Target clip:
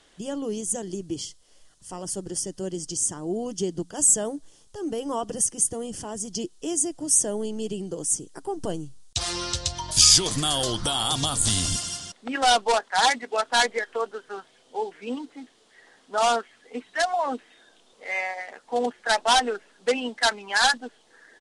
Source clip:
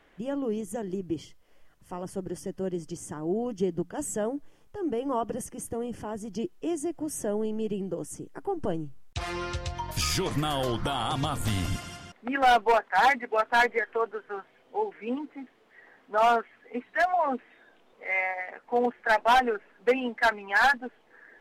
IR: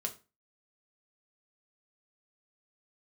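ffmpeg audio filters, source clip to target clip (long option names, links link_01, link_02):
-af "aexciter=amount=6.1:drive=5.1:freq=3300,aresample=22050,aresample=44100"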